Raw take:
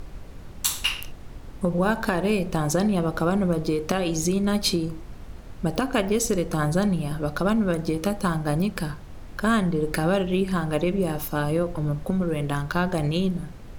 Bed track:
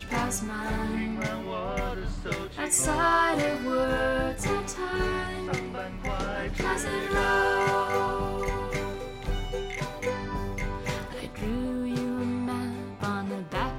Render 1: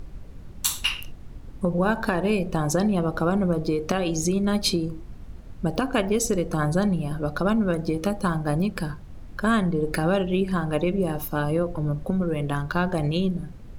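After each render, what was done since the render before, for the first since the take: noise reduction 7 dB, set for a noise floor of -40 dBFS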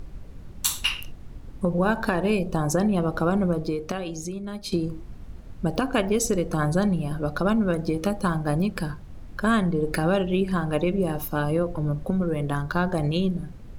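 2.38–2.92 s: peaking EQ 1.5 kHz -> 5.6 kHz -7.5 dB; 3.44–4.72 s: fade out quadratic, to -11.5 dB; 12.29–13.12 s: peaking EQ 2.7 kHz -5.5 dB 0.48 oct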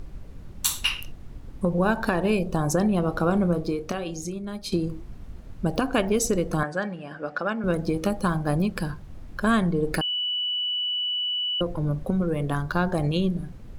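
3.02–4.39 s: doubling 29 ms -14 dB; 6.63–7.64 s: cabinet simulation 350–6600 Hz, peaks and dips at 370 Hz -7 dB, 670 Hz -3 dB, 1 kHz -4 dB, 1.7 kHz +7 dB, 4 kHz -10 dB, 6.3 kHz -8 dB; 10.01–11.61 s: bleep 2.96 kHz -24 dBFS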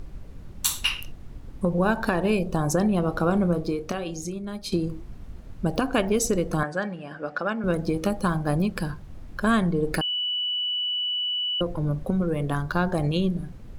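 no audible change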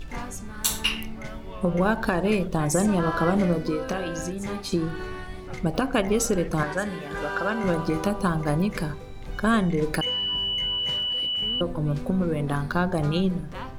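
add bed track -7.5 dB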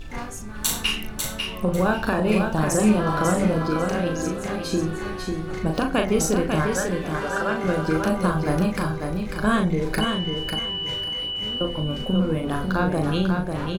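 doubling 38 ms -4.5 dB; on a send: feedback delay 546 ms, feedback 22%, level -5 dB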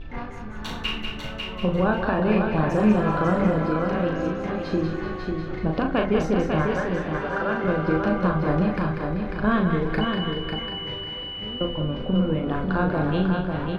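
distance through air 300 m; thinning echo 193 ms, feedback 46%, level -5.5 dB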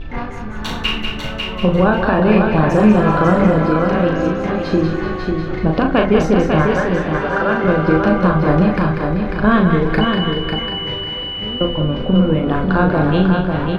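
trim +8.5 dB; peak limiter -2 dBFS, peak gain reduction 2 dB

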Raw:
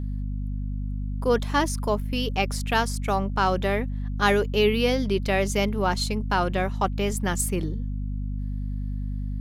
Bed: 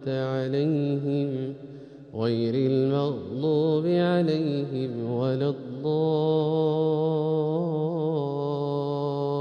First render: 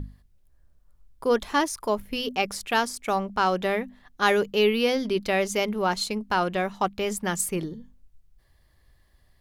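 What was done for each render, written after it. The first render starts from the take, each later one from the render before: hum notches 50/100/150/200/250 Hz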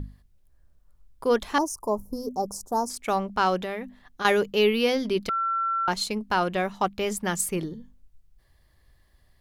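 1.58–2.90 s: Chebyshev band-stop 1–5.8 kHz, order 3; 3.59–4.25 s: compression, threshold -28 dBFS; 5.29–5.88 s: bleep 1.35 kHz -23 dBFS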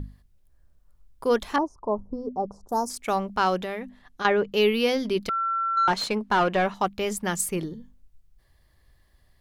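1.56–2.69 s: low-pass 1.7 kHz; 3.78–4.52 s: low-pass that closes with the level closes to 2 kHz, closed at -17.5 dBFS; 5.77–6.74 s: overdrive pedal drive 17 dB, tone 1.7 kHz, clips at -12 dBFS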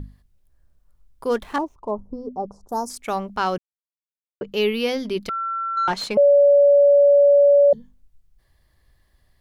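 1.29–1.91 s: median filter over 9 samples; 3.58–4.41 s: mute; 6.17–7.73 s: bleep 570 Hz -10 dBFS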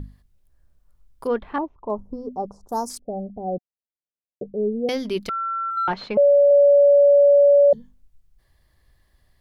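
1.27–1.90 s: distance through air 410 m; 2.99–4.89 s: rippled Chebyshev low-pass 750 Hz, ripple 3 dB; 5.70–6.51 s: distance through air 290 m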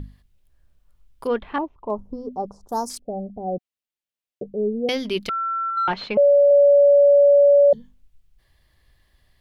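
peaking EQ 2.9 kHz +6.5 dB 1.1 oct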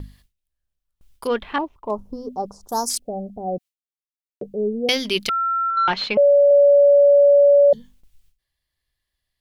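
gate with hold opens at -46 dBFS; treble shelf 2.1 kHz +11.5 dB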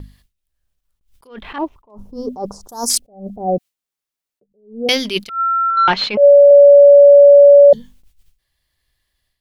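level rider gain up to 9.5 dB; attacks held to a fixed rise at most 150 dB/s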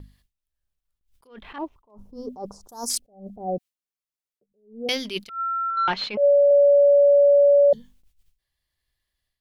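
trim -9.5 dB

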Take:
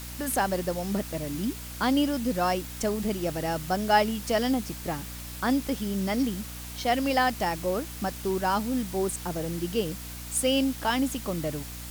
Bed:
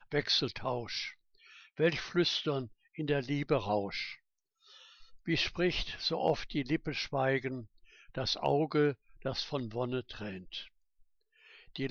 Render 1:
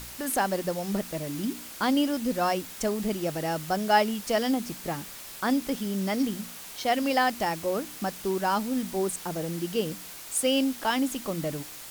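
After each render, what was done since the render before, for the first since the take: de-hum 60 Hz, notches 5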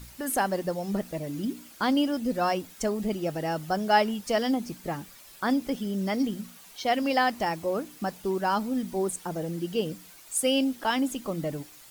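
noise reduction 10 dB, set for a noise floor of -43 dBFS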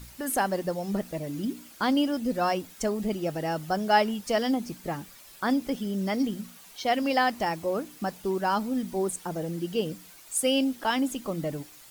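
no audible change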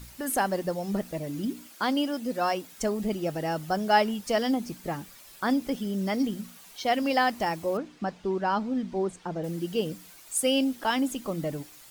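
1.67–2.73 s: high-pass 280 Hz 6 dB/octave; 7.77–9.44 s: distance through air 130 m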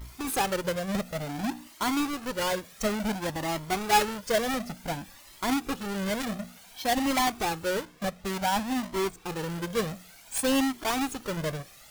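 square wave that keeps the level; Shepard-style flanger rising 0.56 Hz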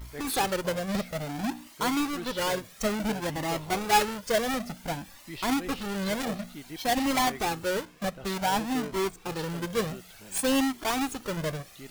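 add bed -10 dB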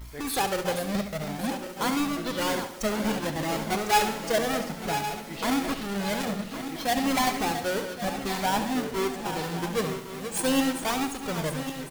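backward echo that repeats 557 ms, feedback 65%, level -9 dB; feedback delay 70 ms, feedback 48%, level -10.5 dB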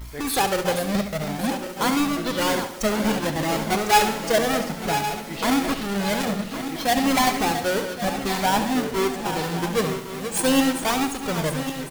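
trim +5 dB

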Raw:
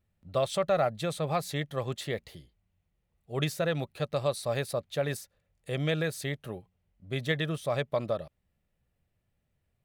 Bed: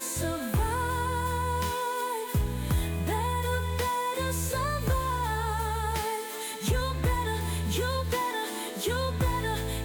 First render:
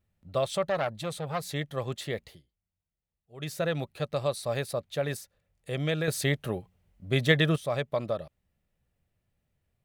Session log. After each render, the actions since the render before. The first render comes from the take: 0.63–1.44 s: transformer saturation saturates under 1.2 kHz; 2.26–3.56 s: dip -14 dB, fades 0.17 s; 6.08–7.56 s: gain +7 dB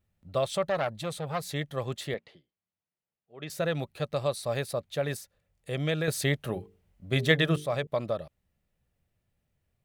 2.14–3.50 s: band-pass 200–3200 Hz; 6.43–7.87 s: hum notches 50/100/150/200/250/300/350/400/450 Hz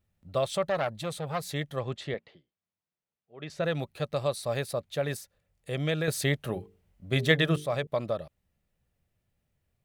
1.79–3.64 s: distance through air 98 m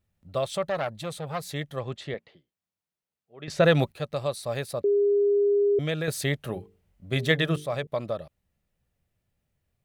3.48–3.92 s: gain +10 dB; 4.84–5.79 s: bleep 406 Hz -18.5 dBFS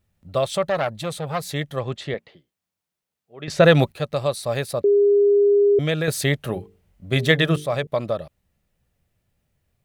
trim +6 dB; peak limiter -1 dBFS, peak gain reduction 1 dB

